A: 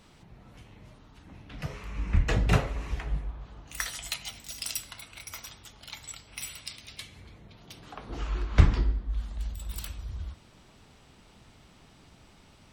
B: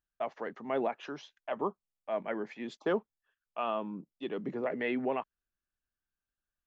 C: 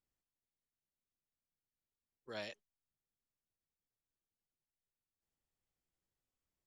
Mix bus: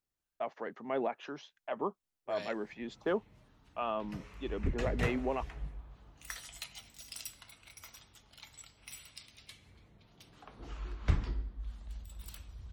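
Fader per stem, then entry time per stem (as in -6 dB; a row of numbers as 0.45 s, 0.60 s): -10.5 dB, -2.0 dB, +0.5 dB; 2.50 s, 0.20 s, 0.00 s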